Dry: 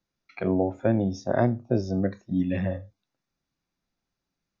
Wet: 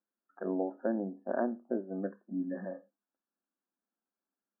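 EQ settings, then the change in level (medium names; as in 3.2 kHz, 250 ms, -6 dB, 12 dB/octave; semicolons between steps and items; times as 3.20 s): brick-wall FIR band-pass 190–1800 Hz; -8.0 dB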